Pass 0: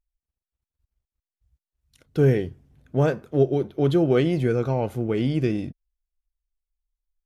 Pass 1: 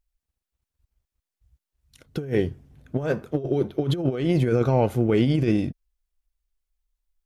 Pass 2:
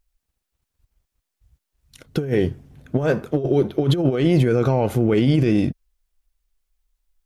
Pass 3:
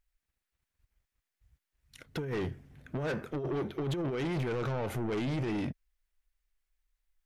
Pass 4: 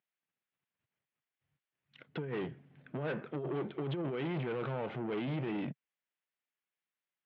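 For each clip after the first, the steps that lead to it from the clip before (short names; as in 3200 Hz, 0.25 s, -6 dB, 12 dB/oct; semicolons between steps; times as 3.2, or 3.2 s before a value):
negative-ratio compressor -23 dBFS, ratio -0.5; gain +2 dB
bell 65 Hz -5.5 dB 0.75 oct; limiter -15.5 dBFS, peak gain reduction 7 dB; gain +7 dB
bell 1900 Hz +8 dB 1.1 oct; soft clip -21 dBFS, distortion -7 dB; gain -8.5 dB
elliptic band-pass 140–3200 Hz, stop band 50 dB; gain -2.5 dB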